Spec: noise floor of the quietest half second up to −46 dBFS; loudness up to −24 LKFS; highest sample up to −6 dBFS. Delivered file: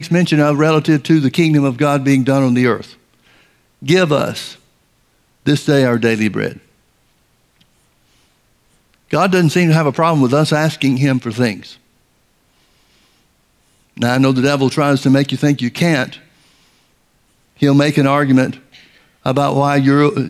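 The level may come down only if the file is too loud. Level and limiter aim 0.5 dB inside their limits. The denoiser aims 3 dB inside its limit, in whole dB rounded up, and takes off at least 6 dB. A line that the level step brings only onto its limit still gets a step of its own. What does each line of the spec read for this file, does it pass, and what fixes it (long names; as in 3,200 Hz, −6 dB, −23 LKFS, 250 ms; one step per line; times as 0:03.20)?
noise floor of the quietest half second −58 dBFS: in spec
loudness −14.5 LKFS: out of spec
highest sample −2.0 dBFS: out of spec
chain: level −10 dB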